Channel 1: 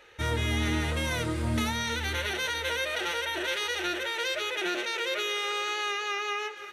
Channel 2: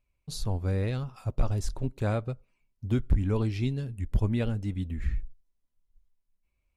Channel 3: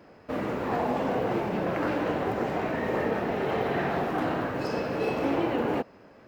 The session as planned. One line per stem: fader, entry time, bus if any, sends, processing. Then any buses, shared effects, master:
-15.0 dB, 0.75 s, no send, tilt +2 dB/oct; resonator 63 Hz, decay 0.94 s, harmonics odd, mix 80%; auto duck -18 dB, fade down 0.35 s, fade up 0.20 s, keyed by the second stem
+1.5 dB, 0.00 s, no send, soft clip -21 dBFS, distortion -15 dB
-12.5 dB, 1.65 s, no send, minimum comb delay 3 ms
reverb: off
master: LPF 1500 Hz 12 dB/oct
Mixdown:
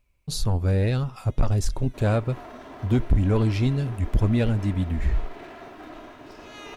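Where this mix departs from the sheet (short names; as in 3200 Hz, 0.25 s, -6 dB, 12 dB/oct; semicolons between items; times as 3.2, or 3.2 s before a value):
stem 1: missing resonator 63 Hz, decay 0.94 s, harmonics odd, mix 80%; stem 2 +1.5 dB -> +8.0 dB; master: missing LPF 1500 Hz 12 dB/oct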